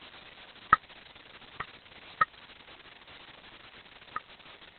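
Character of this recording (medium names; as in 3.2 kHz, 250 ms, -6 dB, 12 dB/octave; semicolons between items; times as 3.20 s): aliases and images of a low sample rate 3.1 kHz, jitter 0%; chopped level 1.4 Hz, depth 65%, duty 40%; a quantiser's noise floor 8-bit, dither triangular; Opus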